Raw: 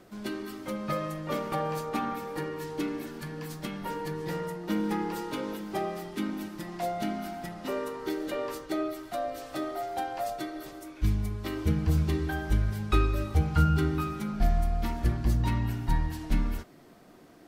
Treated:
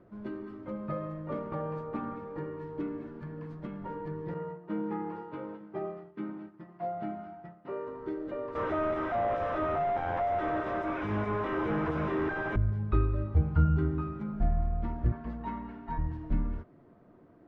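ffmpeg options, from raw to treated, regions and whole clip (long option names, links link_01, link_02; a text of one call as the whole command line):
ffmpeg -i in.wav -filter_complex "[0:a]asettb=1/sr,asplit=3[link_01][link_02][link_03];[link_01]atrim=end=4.344[link_04];[link_02]atrim=start=4.34:end=7.88,asetpts=PTS-STARTPTS,afade=type=in:duration=0.004:curve=qsin,afade=type=out:start_time=3.536:duration=0.004:curve=qsin,agate=range=-33dB:threshold=-34dB:ratio=3:release=100:detection=peak,highpass=120,equalizer=frequency=250:width_type=q:width=4:gain=-10,equalizer=frequency=550:width_type=q:width=4:gain=-4,equalizer=frequency=3800:width_type=q:width=4:gain=-4,lowpass=frequency=5000:width=0.5412,lowpass=frequency=5000:width=1.3066,asplit=2[link_05][link_06];[link_06]adelay=13,volume=-6.5dB[link_07];[link_05][link_07]amix=inputs=2:normalize=0,atrim=end_sample=156114[link_08];[link_03]atrim=start=7.876[link_09];[link_04][link_08]acrossfade=duration=0.004:curve1=hsin:curve2=qsin[link_10];[link_10][link_09]acrossfade=duration=0.004:curve1=qsin:curve2=hsin,asettb=1/sr,asplit=3[link_11][link_12][link_13];[link_11]atrim=end=8.554[link_14];[link_12]atrim=start=8.55:end=12.56,asetpts=PTS-STARTPTS,afade=type=in:duration=0.004:curve=qsin,afade=type=out:start_time=4.006:duration=0.004:curve=qsin,highpass=frequency=780:poles=1,asplit=2[link_15][link_16];[link_16]highpass=frequency=720:poles=1,volume=45dB,asoftclip=type=tanh:threshold=-17dB[link_17];[link_15][link_17]amix=inputs=2:normalize=0,lowpass=frequency=1900:poles=1,volume=-6dB,bandreject=frequency=4400:width=6.1[link_18];[link_13]atrim=start=12.556[link_19];[link_14][link_18]acrossfade=duration=0.004:curve1=hsin:curve2=qsin[link_20];[link_20][link_19]acrossfade=duration=0.004:curve1=qsin:curve2=hsin,asettb=1/sr,asplit=3[link_21][link_22][link_23];[link_21]atrim=end=15.124[link_24];[link_22]atrim=start=15.12:end=15.98,asetpts=PTS-STARTPTS,afade=type=in:duration=0.004:curve=qsin,afade=type=out:start_time=0.856:duration=0.004:curve=qsin,lowpass=2500,aemphasis=mode=production:type=riaa,aecho=1:1:4.5:0.98,atrim=end_sample=37926[link_25];[link_23]atrim=start=15.976[link_26];[link_24][link_25]acrossfade=duration=0.004:curve1=hsin:curve2=qsin[link_27];[link_27][link_26]acrossfade=duration=0.004:curve1=qsin:curve2=hsin,lowpass=1200,equalizer=frequency=100:width_type=o:width=0.81:gain=6,bandreject=frequency=770:width=12,volume=-3.5dB" out.wav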